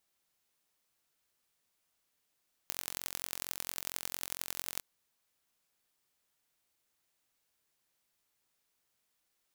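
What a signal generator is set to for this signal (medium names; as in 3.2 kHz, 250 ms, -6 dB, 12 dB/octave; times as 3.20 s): pulse train 44.3 per s, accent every 4, -7.5 dBFS 2.11 s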